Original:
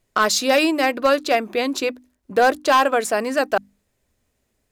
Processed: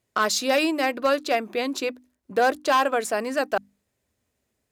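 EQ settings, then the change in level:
high-pass filter 65 Hz
−4.5 dB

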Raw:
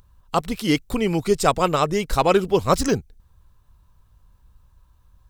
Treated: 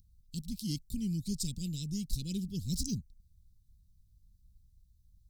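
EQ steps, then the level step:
elliptic band-stop filter 210–4,400 Hz, stop band 80 dB
−8.0 dB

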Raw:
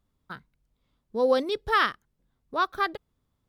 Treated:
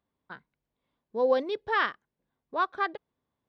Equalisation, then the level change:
high-pass filter 540 Hz 6 dB per octave
head-to-tape spacing loss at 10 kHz 27 dB
notch filter 1,300 Hz, Q 8.6
+3.0 dB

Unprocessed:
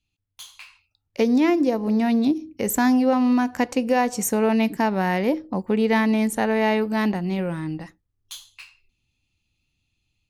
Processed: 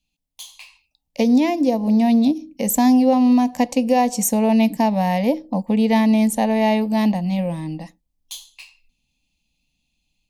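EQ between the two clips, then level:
phaser with its sweep stopped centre 380 Hz, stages 6
+5.0 dB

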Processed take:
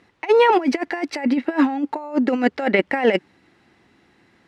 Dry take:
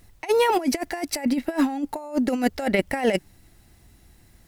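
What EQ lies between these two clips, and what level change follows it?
band-pass filter 270–2,700 Hz
parametric band 650 Hz −6 dB 0.46 octaves
+7.0 dB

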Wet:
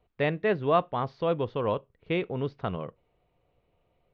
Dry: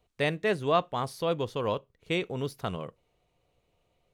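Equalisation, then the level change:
Gaussian smoothing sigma 2.7 samples
+2.0 dB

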